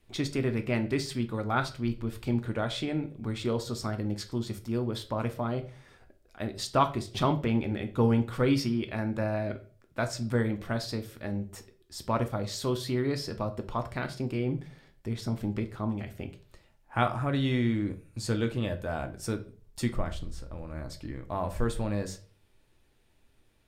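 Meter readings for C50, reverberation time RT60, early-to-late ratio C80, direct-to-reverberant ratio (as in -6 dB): 14.0 dB, 0.40 s, 19.5 dB, 6.5 dB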